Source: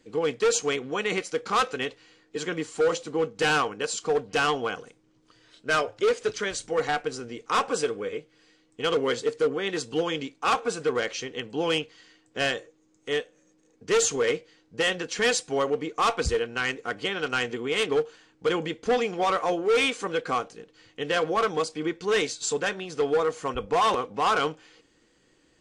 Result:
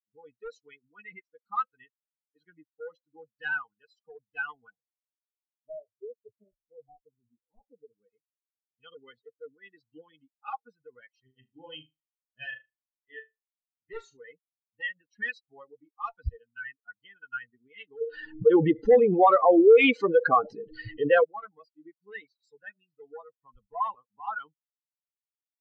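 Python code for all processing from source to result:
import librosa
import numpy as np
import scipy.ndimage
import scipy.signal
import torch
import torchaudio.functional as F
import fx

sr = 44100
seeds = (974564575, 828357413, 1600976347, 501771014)

y = fx.chain(x, sr, fx.cheby2_bandstop(low_hz=1300.0, high_hz=7600.0, order=4, stop_db=40),
    fx.echo_single(ms=708, db=-17.5), at=(4.7, 7.93))
y = fx.chain(y, sr, fx.doubler(ms=31.0, db=-12),
    fx.room_flutter(wall_m=6.6, rt60_s=0.55), at=(11.22, 14.17))
y = fx.chain(y, sr, fx.peak_eq(hz=430.0, db=8.5, octaves=1.0),
    fx.env_flatten(amount_pct=70), at=(18.01, 21.24))
y = fx.bin_expand(y, sr, power=3.0)
y = scipy.signal.sosfilt(scipy.signal.butter(4, 2500.0, 'lowpass', fs=sr, output='sos'), y)
y = y * 10.0 ** (1.5 / 20.0)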